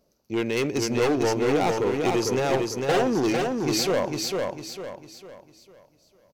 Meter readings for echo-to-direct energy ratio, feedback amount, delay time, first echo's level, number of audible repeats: −3.0 dB, 38%, 451 ms, −3.5 dB, 4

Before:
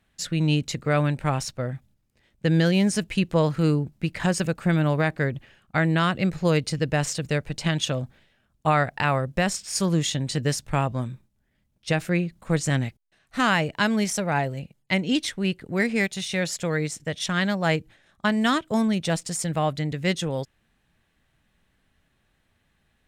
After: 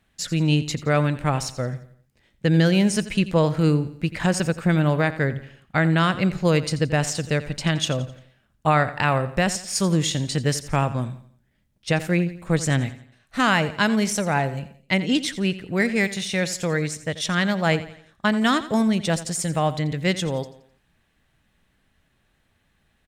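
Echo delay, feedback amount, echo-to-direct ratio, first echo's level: 86 ms, 41%, −14.0 dB, −15.0 dB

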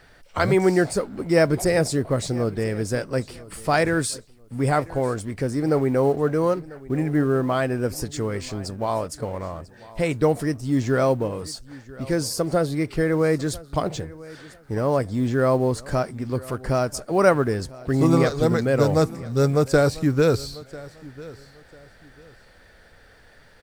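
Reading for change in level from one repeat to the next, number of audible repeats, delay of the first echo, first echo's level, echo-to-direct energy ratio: −11.5 dB, 2, 995 ms, −20.0 dB, −19.5 dB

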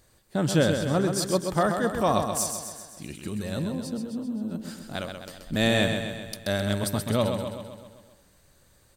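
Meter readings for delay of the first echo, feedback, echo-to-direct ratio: 130 ms, 57%, −5.0 dB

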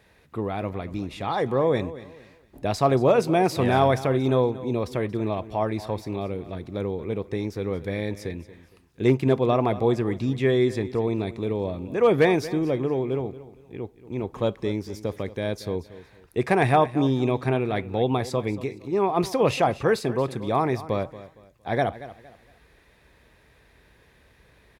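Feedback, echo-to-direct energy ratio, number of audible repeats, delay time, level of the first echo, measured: 30%, −15.5 dB, 2, 231 ms, −16.0 dB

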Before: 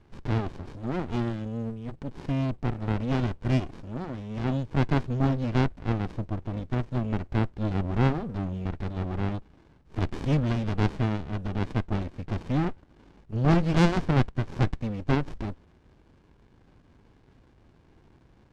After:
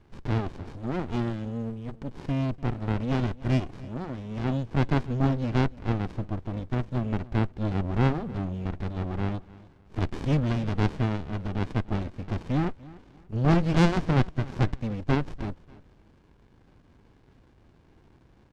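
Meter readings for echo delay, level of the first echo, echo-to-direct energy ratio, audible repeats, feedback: 294 ms, −20.5 dB, −20.0 dB, 2, 30%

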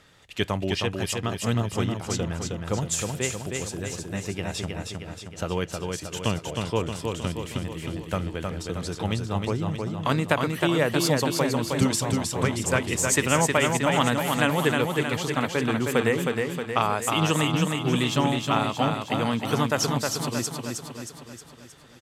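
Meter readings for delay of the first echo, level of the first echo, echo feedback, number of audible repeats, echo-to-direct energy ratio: 314 ms, −4.0 dB, 55%, 6, −2.5 dB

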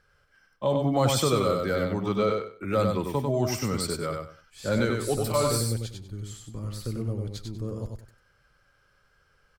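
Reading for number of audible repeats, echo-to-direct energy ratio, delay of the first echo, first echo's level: 3, −4.0 dB, 96 ms, −4.0 dB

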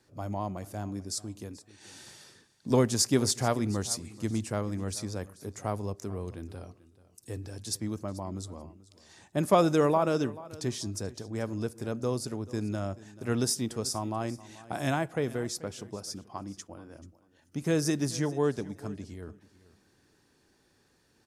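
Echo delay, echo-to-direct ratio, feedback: 435 ms, −19.0 dB, 16%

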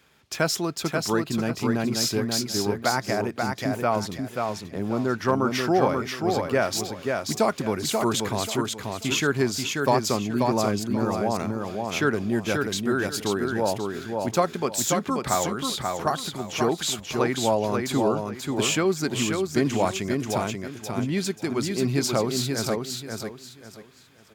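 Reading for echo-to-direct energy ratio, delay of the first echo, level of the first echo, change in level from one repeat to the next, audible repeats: −3.5 dB, 535 ms, −4.0 dB, −11.5 dB, 3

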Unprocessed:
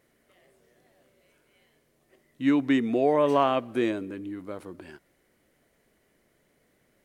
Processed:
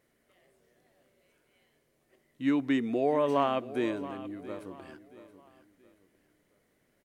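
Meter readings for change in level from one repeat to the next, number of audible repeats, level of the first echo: −9.0 dB, 3, −15.5 dB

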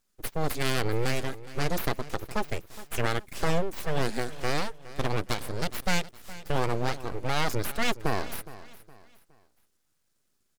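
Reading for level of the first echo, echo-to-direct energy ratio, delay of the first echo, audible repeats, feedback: −17.0 dB, −16.5 dB, 415 ms, 3, 36%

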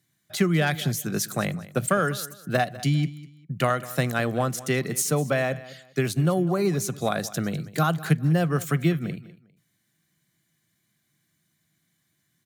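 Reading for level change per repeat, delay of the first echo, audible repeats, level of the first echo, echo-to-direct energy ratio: −11.5 dB, 200 ms, 2, −18.0 dB, −17.5 dB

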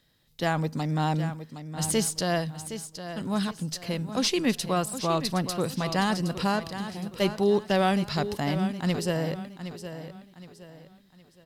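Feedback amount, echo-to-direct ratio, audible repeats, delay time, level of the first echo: 35%, −10.5 dB, 3, 766 ms, −11.0 dB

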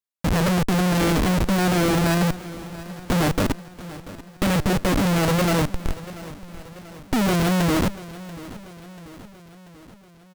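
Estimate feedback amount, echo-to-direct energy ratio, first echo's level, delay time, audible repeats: 58%, −15.0 dB, −17.0 dB, 687 ms, 4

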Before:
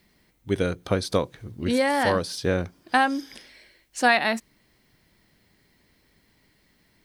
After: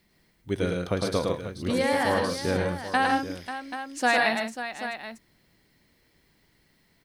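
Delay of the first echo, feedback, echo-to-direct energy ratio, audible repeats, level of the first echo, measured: 107 ms, repeats not evenly spaced, −1.0 dB, 4, −3.5 dB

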